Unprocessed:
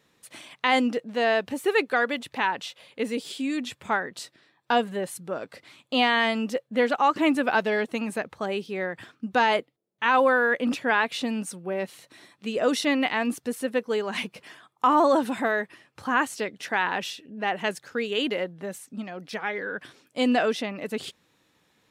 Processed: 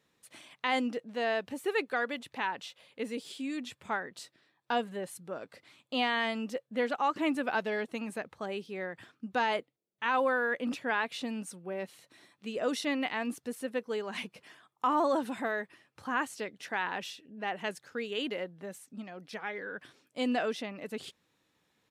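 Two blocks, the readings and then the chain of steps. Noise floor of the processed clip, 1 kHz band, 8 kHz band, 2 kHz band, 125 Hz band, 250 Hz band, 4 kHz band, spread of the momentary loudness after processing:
-78 dBFS, -8.0 dB, -8.0 dB, -8.0 dB, -8.0 dB, -8.0 dB, -8.0 dB, 14 LU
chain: resampled via 32 kHz; trim -8 dB

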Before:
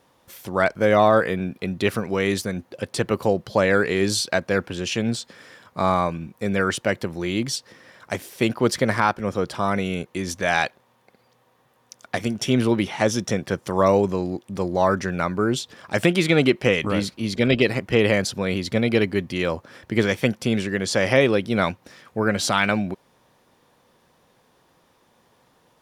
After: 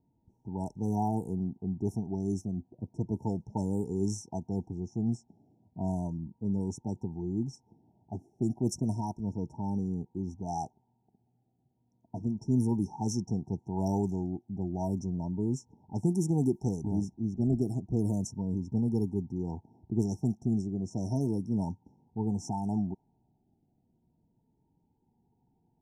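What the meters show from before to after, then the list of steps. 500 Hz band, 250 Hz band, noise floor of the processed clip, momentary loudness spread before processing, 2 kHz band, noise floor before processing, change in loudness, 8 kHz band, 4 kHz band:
-17.0 dB, -6.5 dB, -74 dBFS, 10 LU, under -40 dB, -62 dBFS, -10.5 dB, -14.0 dB, -26.0 dB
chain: level-controlled noise filter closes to 650 Hz, open at -14 dBFS; brick-wall FIR band-stop 950–5300 Hz; static phaser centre 1.3 kHz, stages 4; Shepard-style phaser falling 0.33 Hz; trim -3.5 dB

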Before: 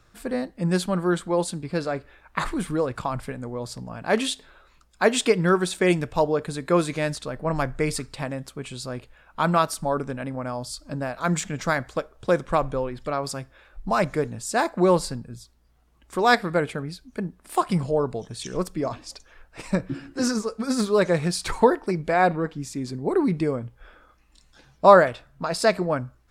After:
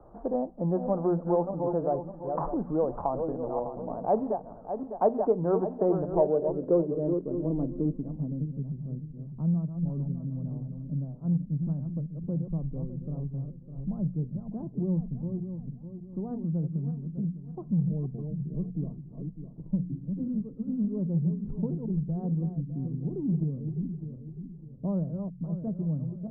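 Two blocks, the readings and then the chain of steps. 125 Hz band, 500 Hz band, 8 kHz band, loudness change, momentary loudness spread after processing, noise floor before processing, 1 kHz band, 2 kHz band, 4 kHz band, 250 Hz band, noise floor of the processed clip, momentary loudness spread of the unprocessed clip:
+0.5 dB, -7.0 dB, under -40 dB, -6.5 dB, 11 LU, -59 dBFS, -12.0 dB, under -35 dB, under -40 dB, -3.0 dB, -46 dBFS, 13 LU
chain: backward echo that repeats 302 ms, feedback 48%, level -7.5 dB; low-pass sweep 760 Hz -> 160 Hz, 5.92–8.77 s; hum notches 60/120/180/240 Hz; in parallel at -10.5 dB: saturation -19.5 dBFS, distortion -9 dB; on the sum: low-pass 1.1 kHz 24 dB/octave; peaking EQ 110 Hz -13.5 dB 0.24 oct; three bands compressed up and down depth 40%; trim -6 dB

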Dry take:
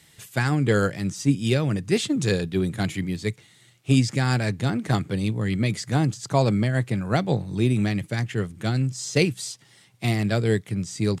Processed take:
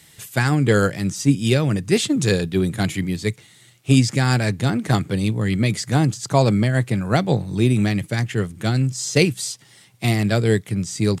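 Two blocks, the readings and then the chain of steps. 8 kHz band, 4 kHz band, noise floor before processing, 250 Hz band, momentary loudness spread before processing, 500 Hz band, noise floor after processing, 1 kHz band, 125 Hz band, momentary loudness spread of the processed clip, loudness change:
+6.0 dB, +5.0 dB, -56 dBFS, +4.0 dB, 7 LU, +4.0 dB, -51 dBFS, +4.0 dB, +4.0 dB, 7 LU, +4.0 dB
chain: treble shelf 9.2 kHz +6 dB; trim +4 dB

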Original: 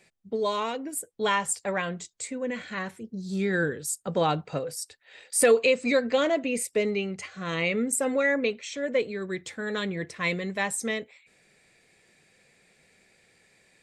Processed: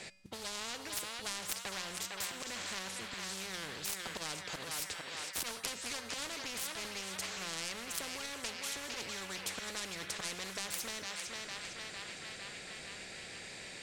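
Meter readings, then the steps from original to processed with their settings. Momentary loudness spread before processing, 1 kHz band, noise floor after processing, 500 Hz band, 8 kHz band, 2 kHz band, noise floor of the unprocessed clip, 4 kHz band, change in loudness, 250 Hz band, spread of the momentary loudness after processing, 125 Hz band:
11 LU, -13.0 dB, -48 dBFS, -22.0 dB, -6.5 dB, -10.5 dB, -64 dBFS, -1.5 dB, -12.0 dB, -19.0 dB, 6 LU, -17.0 dB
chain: self-modulated delay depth 0.21 ms; peaking EQ 4.5 kHz +4 dB 1.9 oct; slow attack 102 ms; on a send: band-passed feedback delay 455 ms, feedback 65%, band-pass 2 kHz, level -10 dB; on the sum: compression, threshold -32 dBFS, peak gain reduction 15 dB; feedback comb 190 Hz, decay 0.87 s, harmonics odd, mix 60%; modulation noise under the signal 27 dB; low-pass 8.8 kHz 12 dB/octave; spectrum-flattening compressor 4:1; trim +9 dB

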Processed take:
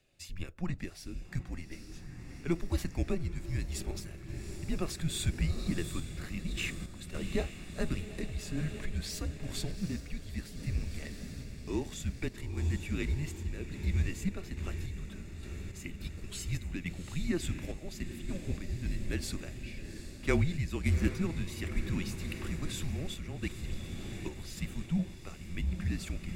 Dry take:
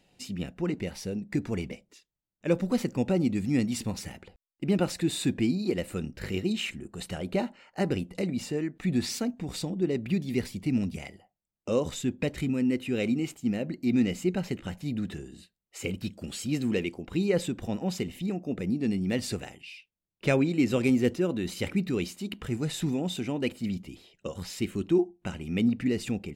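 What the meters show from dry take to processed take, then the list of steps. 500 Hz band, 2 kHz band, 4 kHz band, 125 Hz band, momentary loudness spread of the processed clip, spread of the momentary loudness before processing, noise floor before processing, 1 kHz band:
-11.5 dB, -4.0 dB, -5.5 dB, -1.5 dB, 11 LU, 11 LU, under -85 dBFS, -8.0 dB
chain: treble shelf 8.6 kHz +4.5 dB; echo that smears into a reverb 798 ms, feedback 72%, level -9.5 dB; random-step tremolo; frequency shift -170 Hz; trim -3.5 dB

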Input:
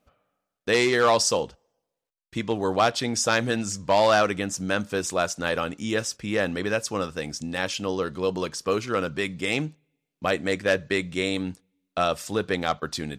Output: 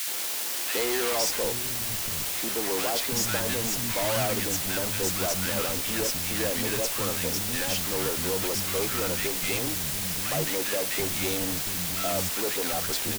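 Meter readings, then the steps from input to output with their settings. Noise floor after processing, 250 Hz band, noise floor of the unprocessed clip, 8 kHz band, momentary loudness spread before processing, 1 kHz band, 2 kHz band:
-31 dBFS, -5.0 dB, -84 dBFS, +5.5 dB, 10 LU, -7.0 dB, -4.0 dB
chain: valve stage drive 31 dB, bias 0.8; word length cut 6-bit, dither triangular; three bands offset in time highs, mids, lows 70/760 ms, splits 230/1200 Hz; trim +5.5 dB

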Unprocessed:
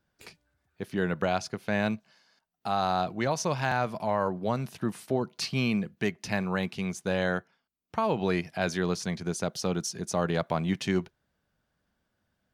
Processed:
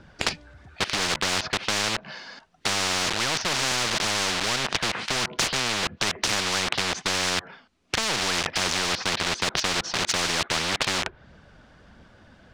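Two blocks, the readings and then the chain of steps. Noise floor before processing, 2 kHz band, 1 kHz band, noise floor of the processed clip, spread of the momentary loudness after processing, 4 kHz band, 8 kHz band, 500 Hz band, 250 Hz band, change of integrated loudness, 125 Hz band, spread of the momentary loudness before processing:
-79 dBFS, +8.5 dB, +2.5 dB, -54 dBFS, 5 LU, +16.0 dB, +13.0 dB, -3.0 dB, -5.0 dB, +5.5 dB, -4.0 dB, 5 LU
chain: low-pass that closes with the level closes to 1.8 kHz, closed at -27.5 dBFS; phaser 1.5 Hz, delay 4.1 ms, feedback 30%; in parallel at -5.5 dB: companded quantiser 2-bit; on the sum: distance through air 100 m; spectrum-flattening compressor 10:1; trim +8.5 dB

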